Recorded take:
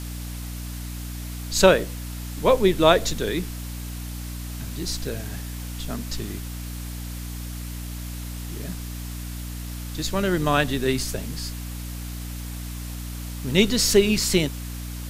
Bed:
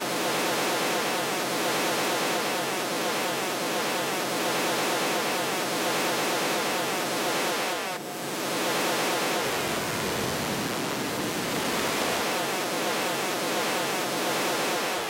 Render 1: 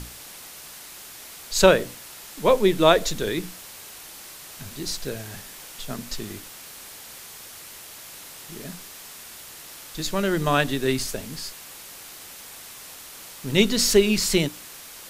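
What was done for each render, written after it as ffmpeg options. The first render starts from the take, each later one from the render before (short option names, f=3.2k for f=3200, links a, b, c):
-af "bandreject=f=60:t=h:w=6,bandreject=f=120:t=h:w=6,bandreject=f=180:t=h:w=6,bandreject=f=240:t=h:w=6,bandreject=f=300:t=h:w=6"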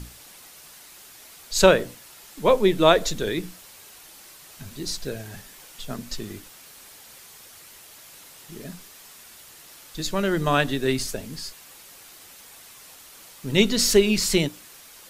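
-af "afftdn=nr=6:nf=-42"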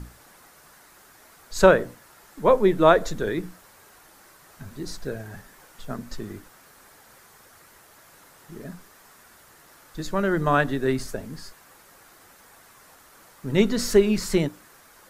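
-af "highshelf=f=2.1k:t=q:w=1.5:g=-8"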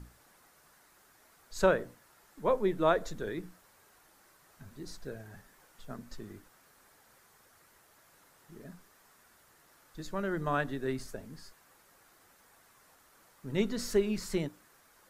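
-af "volume=-10.5dB"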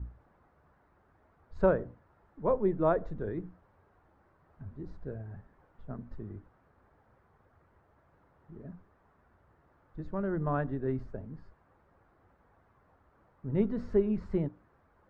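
-af "lowpass=1.1k,equalizer=f=70:w=0.8:g=13"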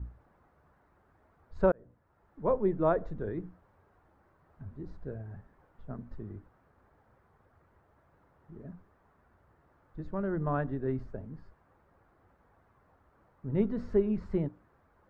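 -filter_complex "[0:a]asplit=2[a][b];[a]atrim=end=1.72,asetpts=PTS-STARTPTS,afade=t=out:st=1.716:d=0.004:c=hsin[c];[b]atrim=start=1.72,asetpts=PTS-STARTPTS,afade=t=in:d=0.68[d];[c][d]concat=n=2:v=0:a=1"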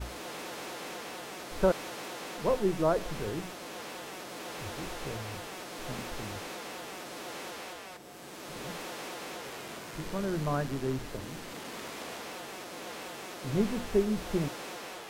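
-filter_complex "[1:a]volume=-14.5dB[a];[0:a][a]amix=inputs=2:normalize=0"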